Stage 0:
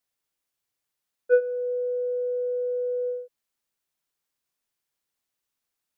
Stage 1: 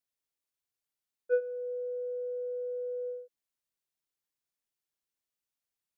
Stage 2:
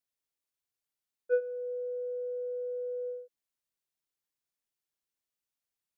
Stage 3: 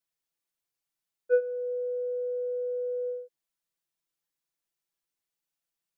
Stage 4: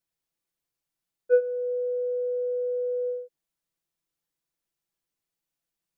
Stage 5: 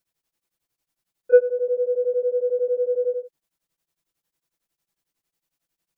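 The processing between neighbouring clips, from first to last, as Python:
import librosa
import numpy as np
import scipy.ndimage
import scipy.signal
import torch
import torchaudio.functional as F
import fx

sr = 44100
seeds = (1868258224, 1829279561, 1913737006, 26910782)

y1 = fx.peak_eq(x, sr, hz=1200.0, db=-2.5, octaves=1.9)
y1 = y1 * 10.0 ** (-7.5 / 20.0)
y2 = y1
y3 = y2 + 0.65 * np.pad(y2, (int(6.0 * sr / 1000.0), 0))[:len(y2)]
y4 = fx.low_shelf(y3, sr, hz=480.0, db=7.0)
y5 = y4 * np.abs(np.cos(np.pi * 11.0 * np.arange(len(y4)) / sr))
y5 = y5 * 10.0 ** (8.5 / 20.0)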